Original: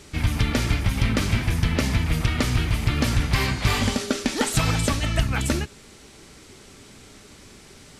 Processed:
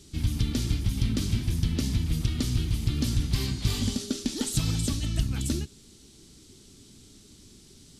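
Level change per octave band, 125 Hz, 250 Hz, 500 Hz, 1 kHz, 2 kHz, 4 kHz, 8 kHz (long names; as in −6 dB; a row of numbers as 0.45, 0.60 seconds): −4.0, −4.0, −11.0, −17.5, −16.0, −5.5, −4.0 decibels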